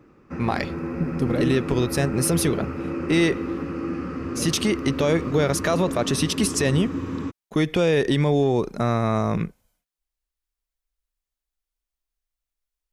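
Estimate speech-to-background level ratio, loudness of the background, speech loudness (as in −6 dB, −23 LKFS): 7.0 dB, −30.0 LKFS, −23.0 LKFS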